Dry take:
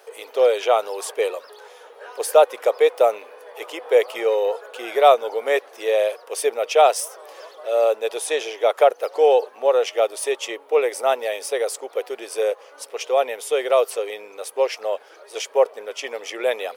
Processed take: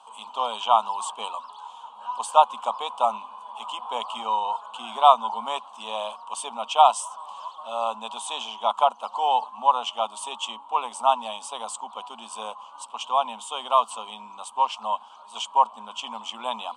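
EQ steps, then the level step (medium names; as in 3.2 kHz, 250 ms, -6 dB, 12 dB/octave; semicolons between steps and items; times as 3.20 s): FFT filter 140 Hz 0 dB, 220 Hz +15 dB, 330 Hz -22 dB, 480 Hz -26 dB, 1 kHz +14 dB, 1.9 kHz -28 dB, 3 kHz +3 dB, 5.3 kHz -13 dB, 8.2 kHz 0 dB, 12 kHz -30 dB; +1.0 dB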